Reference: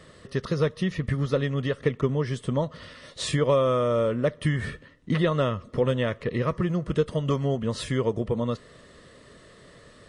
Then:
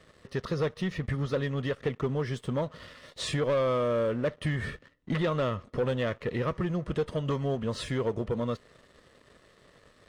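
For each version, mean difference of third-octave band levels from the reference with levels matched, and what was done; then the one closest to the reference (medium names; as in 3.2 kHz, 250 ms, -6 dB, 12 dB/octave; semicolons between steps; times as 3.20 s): 2.5 dB: peaking EQ 160 Hz -3 dB 2.1 oct; waveshaping leveller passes 2; treble shelf 7.2 kHz -8 dB; trim -8.5 dB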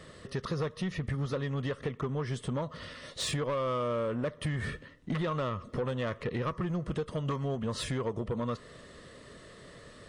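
4.0 dB: dynamic bell 1.1 kHz, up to +7 dB, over -44 dBFS, Q 2.6; compression 3:1, threshold -28 dBFS, peak gain reduction 9.5 dB; saturation -25.5 dBFS, distortion -15 dB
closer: first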